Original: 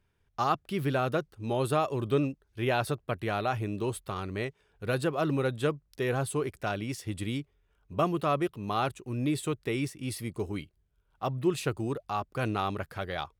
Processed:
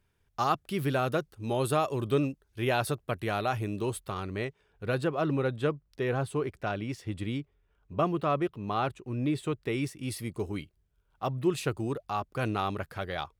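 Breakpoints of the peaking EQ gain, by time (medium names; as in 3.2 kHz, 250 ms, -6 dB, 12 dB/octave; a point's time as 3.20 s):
peaking EQ 13 kHz 1.8 oct
3.69 s +4.5 dB
4.39 s -3.5 dB
5.41 s -12 dB
9.43 s -12 dB
9.94 s -0.5 dB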